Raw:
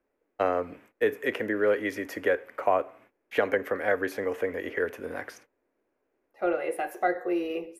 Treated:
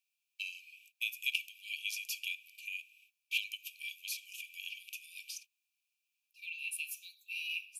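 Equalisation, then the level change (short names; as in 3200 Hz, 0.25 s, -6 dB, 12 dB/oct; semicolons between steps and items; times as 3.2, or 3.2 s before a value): brick-wall FIR high-pass 2300 Hz; +7.5 dB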